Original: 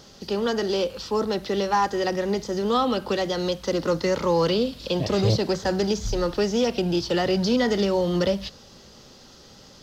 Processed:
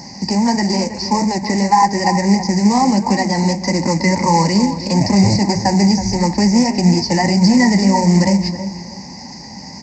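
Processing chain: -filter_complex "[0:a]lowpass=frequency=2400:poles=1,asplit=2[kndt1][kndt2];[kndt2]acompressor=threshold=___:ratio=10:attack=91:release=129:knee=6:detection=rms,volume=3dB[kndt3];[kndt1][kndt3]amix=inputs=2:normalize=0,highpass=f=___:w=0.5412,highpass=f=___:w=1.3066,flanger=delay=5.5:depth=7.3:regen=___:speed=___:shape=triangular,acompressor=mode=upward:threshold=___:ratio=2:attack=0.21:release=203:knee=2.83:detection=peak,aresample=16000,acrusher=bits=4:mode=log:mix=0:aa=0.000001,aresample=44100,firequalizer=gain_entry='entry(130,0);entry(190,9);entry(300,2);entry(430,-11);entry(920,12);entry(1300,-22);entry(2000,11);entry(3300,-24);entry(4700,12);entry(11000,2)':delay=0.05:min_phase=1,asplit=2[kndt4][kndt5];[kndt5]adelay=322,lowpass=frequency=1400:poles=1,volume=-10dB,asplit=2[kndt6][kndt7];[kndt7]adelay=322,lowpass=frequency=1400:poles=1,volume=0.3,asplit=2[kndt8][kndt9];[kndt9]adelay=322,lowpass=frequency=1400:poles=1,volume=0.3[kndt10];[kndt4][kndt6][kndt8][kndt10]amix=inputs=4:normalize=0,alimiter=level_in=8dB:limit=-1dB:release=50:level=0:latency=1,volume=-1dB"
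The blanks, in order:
-33dB, 50, 50, -47, 1.6, -35dB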